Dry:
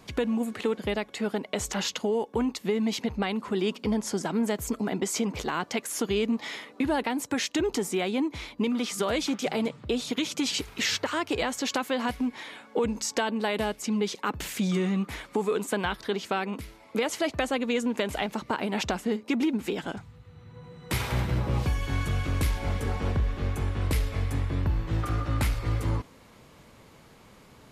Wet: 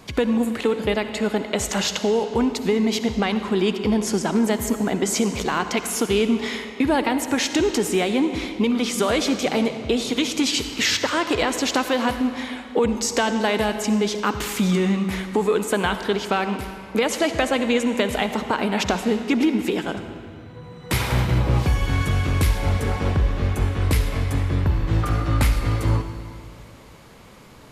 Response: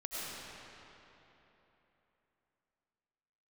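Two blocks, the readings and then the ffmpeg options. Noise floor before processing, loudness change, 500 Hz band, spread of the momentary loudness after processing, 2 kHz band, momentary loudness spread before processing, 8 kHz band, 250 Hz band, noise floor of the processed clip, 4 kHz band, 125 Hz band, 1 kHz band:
-54 dBFS, +7.0 dB, +7.0 dB, 4 LU, +7.0 dB, 4 LU, +7.0 dB, +7.0 dB, -40 dBFS, +7.0 dB, +7.0 dB, +7.0 dB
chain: -filter_complex "[0:a]asplit=2[s0][s1];[1:a]atrim=start_sample=2205,asetrate=70560,aresample=44100[s2];[s1][s2]afir=irnorm=-1:irlink=0,volume=0.531[s3];[s0][s3]amix=inputs=2:normalize=0,volume=1.78"

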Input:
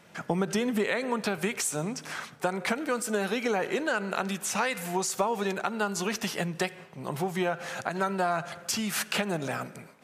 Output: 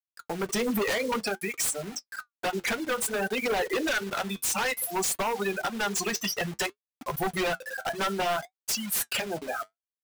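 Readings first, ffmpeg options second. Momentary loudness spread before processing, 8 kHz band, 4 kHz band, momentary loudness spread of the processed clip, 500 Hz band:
6 LU, +3.0 dB, +3.0 dB, 7 LU, -0.5 dB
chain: -af "highpass=73,aemphasis=mode=production:type=bsi,bandreject=f=60:t=h:w=6,bandreject=f=120:t=h:w=6,bandreject=f=180:t=h:w=6,bandreject=f=240:t=h:w=6,bandreject=f=300:t=h:w=6,bandreject=f=360:t=h:w=6,bandreject=f=420:t=h:w=6,bandreject=f=480:t=h:w=6,afftfilt=real='re*gte(hypot(re,im),0.0708)':imag='im*gte(hypot(re,im),0.0708)':win_size=1024:overlap=0.75,dynaudnorm=f=130:g=7:m=5.31,asoftclip=type=hard:threshold=0.299,acrusher=bits=5:mix=0:aa=0.000001,aeval=exprs='0.168*(abs(mod(val(0)/0.168+3,4)-2)-1)':c=same,flanger=delay=4.3:depth=5.9:regen=-61:speed=0.57:shape=triangular,volume=0.794"

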